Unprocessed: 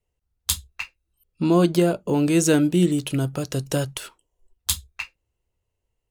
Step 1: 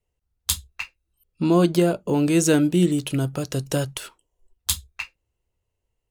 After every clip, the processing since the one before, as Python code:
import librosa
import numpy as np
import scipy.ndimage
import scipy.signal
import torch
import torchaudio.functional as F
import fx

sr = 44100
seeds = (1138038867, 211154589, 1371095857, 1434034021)

y = x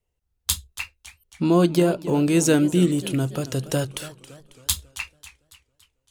y = fx.echo_warbled(x, sr, ms=277, feedback_pct=49, rate_hz=2.8, cents=188, wet_db=-16.0)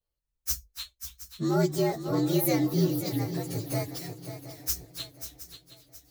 y = fx.partial_stretch(x, sr, pct=118)
y = fx.high_shelf(y, sr, hz=3100.0, db=7.5)
y = fx.echo_swing(y, sr, ms=718, ratio=3, feedback_pct=34, wet_db=-11)
y = F.gain(torch.from_numpy(y), -6.0).numpy()